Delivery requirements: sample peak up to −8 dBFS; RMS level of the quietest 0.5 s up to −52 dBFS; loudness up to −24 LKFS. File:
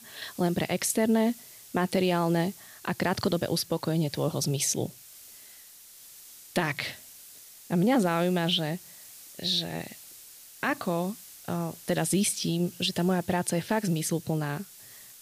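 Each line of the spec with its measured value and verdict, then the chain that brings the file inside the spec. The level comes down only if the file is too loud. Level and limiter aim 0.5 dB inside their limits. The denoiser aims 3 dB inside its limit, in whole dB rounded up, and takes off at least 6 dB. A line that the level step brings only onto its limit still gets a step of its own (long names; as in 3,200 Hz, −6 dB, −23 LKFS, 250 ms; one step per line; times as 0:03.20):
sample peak −13.5 dBFS: in spec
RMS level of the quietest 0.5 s −51 dBFS: out of spec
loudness −28.5 LKFS: in spec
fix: broadband denoise 6 dB, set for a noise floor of −51 dBFS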